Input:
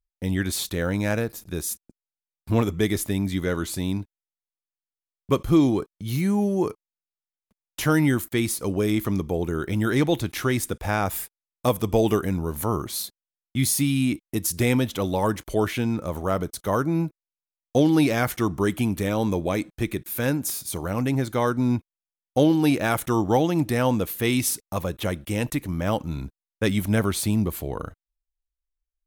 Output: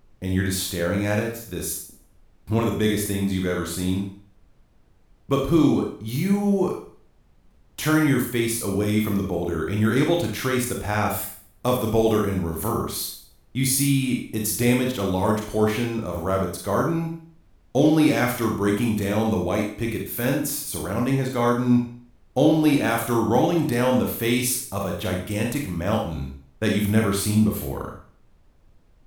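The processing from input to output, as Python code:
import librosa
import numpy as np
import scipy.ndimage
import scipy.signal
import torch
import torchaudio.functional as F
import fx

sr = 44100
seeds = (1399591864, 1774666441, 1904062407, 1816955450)

y = fx.rev_schroeder(x, sr, rt60_s=0.49, comb_ms=29, drr_db=0.0)
y = fx.dmg_noise_colour(y, sr, seeds[0], colour='brown', level_db=-53.0)
y = y * 10.0 ** (-1.5 / 20.0)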